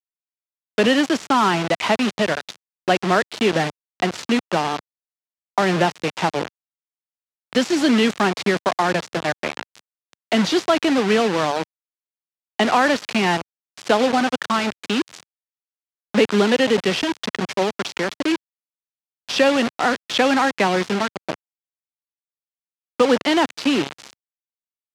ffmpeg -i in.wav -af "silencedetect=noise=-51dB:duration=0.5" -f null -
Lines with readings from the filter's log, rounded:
silence_start: 0.00
silence_end: 0.78 | silence_duration: 0.78
silence_start: 4.80
silence_end: 5.58 | silence_duration: 0.78
silence_start: 6.48
silence_end: 7.53 | silence_duration: 1.05
silence_start: 11.64
silence_end: 12.59 | silence_duration: 0.96
silence_start: 15.23
silence_end: 16.14 | silence_duration: 0.92
silence_start: 18.36
silence_end: 19.29 | silence_duration: 0.93
silence_start: 21.35
silence_end: 23.00 | silence_duration: 1.65
silence_start: 24.13
silence_end: 24.94 | silence_duration: 0.81